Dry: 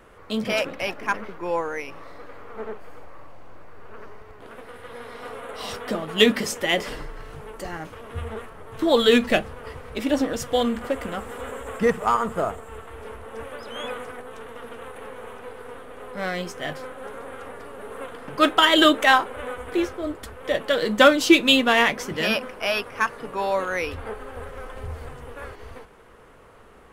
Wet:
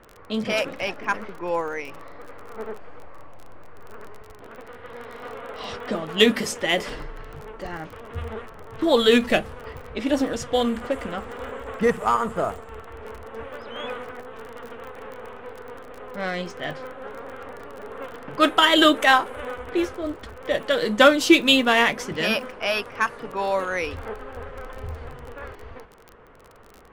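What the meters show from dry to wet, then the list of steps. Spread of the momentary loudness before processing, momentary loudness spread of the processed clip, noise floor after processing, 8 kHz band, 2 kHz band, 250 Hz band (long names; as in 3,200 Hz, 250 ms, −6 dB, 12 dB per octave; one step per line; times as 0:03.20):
23 LU, 23 LU, −46 dBFS, −0.5 dB, 0.0 dB, 0.0 dB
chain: low-pass that shuts in the quiet parts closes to 2,400 Hz, open at −19 dBFS
surface crackle 31 per second −33 dBFS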